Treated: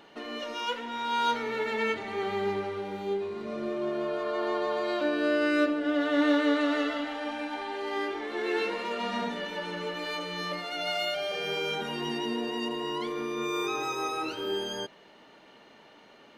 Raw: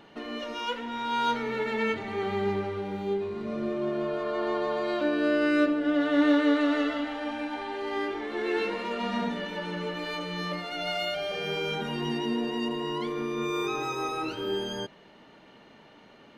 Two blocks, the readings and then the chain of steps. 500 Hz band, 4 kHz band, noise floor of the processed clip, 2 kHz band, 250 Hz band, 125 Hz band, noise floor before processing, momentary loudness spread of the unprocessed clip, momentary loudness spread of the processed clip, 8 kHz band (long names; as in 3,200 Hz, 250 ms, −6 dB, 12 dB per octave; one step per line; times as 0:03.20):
−0.5 dB, +1.0 dB, −55 dBFS, 0.0 dB, −3.0 dB, −6.5 dB, −54 dBFS, 9 LU, 9 LU, can't be measured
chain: bass and treble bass −8 dB, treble +3 dB